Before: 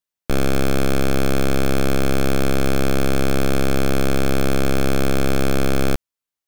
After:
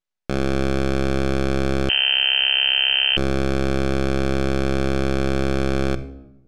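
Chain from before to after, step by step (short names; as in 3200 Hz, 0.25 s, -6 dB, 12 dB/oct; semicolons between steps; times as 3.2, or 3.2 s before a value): half-wave rectifier; air absorption 76 m; shoebox room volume 3500 m³, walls furnished, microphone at 1 m; 1.89–3.17 inverted band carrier 3100 Hz; gain +4 dB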